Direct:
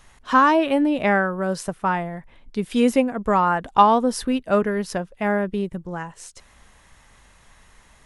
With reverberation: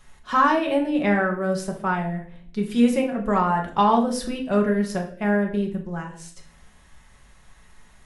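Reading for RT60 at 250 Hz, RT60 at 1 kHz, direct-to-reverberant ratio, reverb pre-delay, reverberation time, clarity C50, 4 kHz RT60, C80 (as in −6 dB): 0.85 s, 0.45 s, 0.5 dB, 5 ms, 0.55 s, 9.5 dB, 0.45 s, 13.5 dB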